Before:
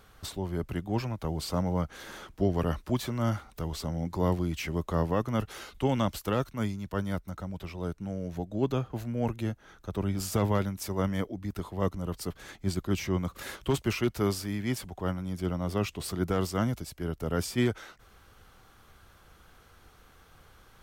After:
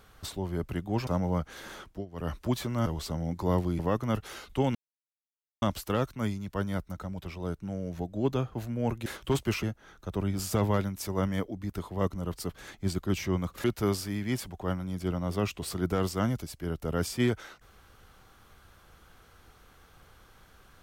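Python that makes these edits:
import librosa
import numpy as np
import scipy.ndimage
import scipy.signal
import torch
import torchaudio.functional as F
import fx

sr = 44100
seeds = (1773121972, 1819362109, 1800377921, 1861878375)

y = fx.edit(x, sr, fx.cut(start_s=1.07, length_s=0.43),
    fx.fade_down_up(start_s=2.25, length_s=0.54, db=-20.5, fade_s=0.24),
    fx.cut(start_s=3.29, length_s=0.31),
    fx.cut(start_s=4.53, length_s=0.51),
    fx.insert_silence(at_s=6.0, length_s=0.87),
    fx.move(start_s=13.45, length_s=0.57, to_s=9.44), tone=tone)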